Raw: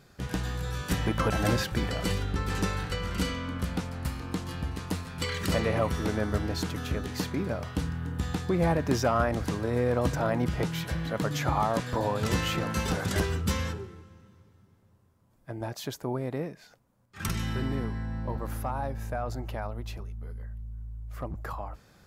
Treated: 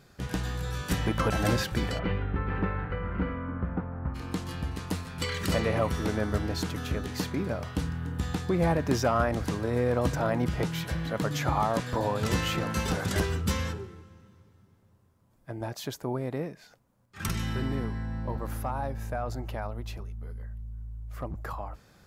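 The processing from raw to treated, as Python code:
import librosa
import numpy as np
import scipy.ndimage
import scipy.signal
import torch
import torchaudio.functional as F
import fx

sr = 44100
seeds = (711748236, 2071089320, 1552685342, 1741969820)

y = fx.lowpass(x, sr, hz=fx.line((1.98, 2600.0), (4.14, 1400.0)), slope=24, at=(1.98, 4.14), fade=0.02)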